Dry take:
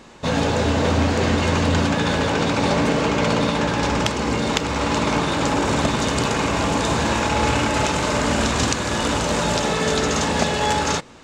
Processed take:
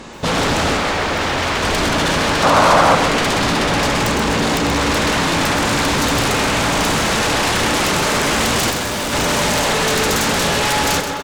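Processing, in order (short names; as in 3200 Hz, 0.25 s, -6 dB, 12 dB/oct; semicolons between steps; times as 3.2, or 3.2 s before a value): speakerphone echo 0.25 s, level -13 dB; sine folder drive 19 dB, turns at -1.5 dBFS; 0.77–1.63 overdrive pedal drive 5 dB, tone 3800 Hz, clips at -1 dBFS; 2.43–2.95 band shelf 840 Hz +9.5 dB; 8.7–9.13 overloaded stage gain 8 dB; lo-fi delay 0.13 s, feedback 35%, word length 5-bit, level -7.5 dB; gain -13 dB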